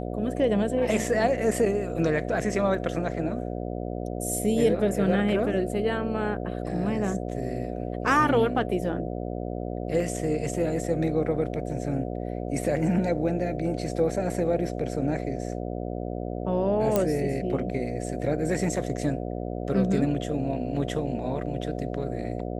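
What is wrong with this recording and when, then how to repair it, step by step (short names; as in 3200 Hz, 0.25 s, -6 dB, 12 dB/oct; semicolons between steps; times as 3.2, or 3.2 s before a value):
buzz 60 Hz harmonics 12 -32 dBFS
16.96 pop -9 dBFS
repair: de-click; de-hum 60 Hz, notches 12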